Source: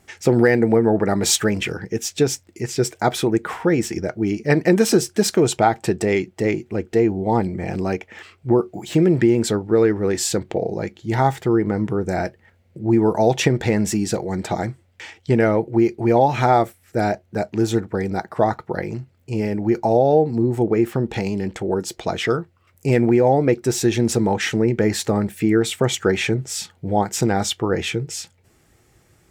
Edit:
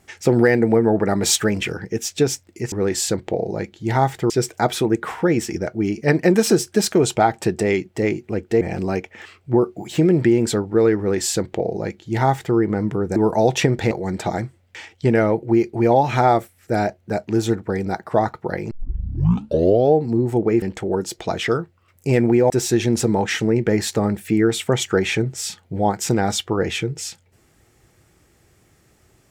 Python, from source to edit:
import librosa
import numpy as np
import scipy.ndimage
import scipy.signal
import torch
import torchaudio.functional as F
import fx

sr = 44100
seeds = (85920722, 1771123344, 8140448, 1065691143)

y = fx.edit(x, sr, fx.cut(start_s=7.03, length_s=0.55),
    fx.duplicate(start_s=9.95, length_s=1.58, to_s=2.72),
    fx.cut(start_s=12.13, length_s=0.85),
    fx.cut(start_s=13.73, length_s=0.43),
    fx.tape_start(start_s=18.96, length_s=1.22),
    fx.cut(start_s=20.87, length_s=0.54),
    fx.cut(start_s=23.29, length_s=0.33), tone=tone)